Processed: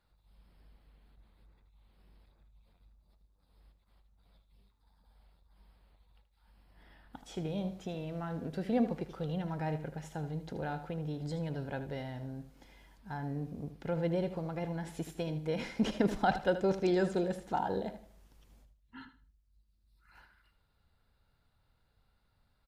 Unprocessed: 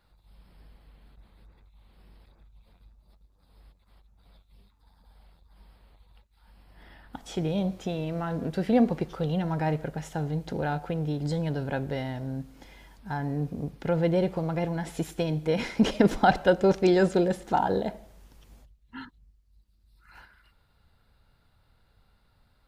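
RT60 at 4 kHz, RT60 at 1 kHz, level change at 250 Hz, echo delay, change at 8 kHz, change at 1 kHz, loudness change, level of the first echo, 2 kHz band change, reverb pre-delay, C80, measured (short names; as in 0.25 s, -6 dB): none, none, -8.0 dB, 78 ms, -8.0 dB, -8.0 dB, -8.0 dB, -12.0 dB, -8.0 dB, none, none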